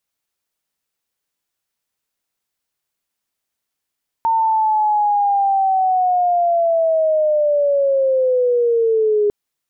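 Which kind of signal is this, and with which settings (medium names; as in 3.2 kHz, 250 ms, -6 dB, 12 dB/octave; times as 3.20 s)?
sweep linear 910 Hz -> 410 Hz -13 dBFS -> -12.5 dBFS 5.05 s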